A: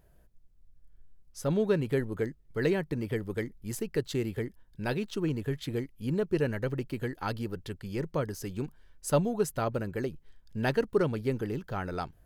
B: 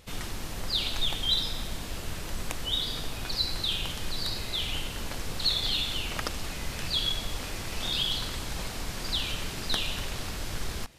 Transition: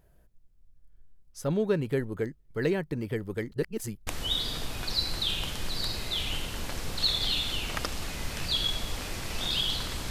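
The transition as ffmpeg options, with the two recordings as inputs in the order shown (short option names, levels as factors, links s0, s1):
-filter_complex "[0:a]apad=whole_dur=10.1,atrim=end=10.1,asplit=2[s0][s1];[s0]atrim=end=3.522[s2];[s1]atrim=start=3.518:end=4.072,asetpts=PTS-STARTPTS,areverse[s3];[1:a]atrim=start=2.488:end=8.52[s4];[s2][s3]acrossfade=d=0.004:c1=hsin:c2=hsin[s5];[s5][s4]acrossfade=d=0.004:c1=hsin:c2=hsin"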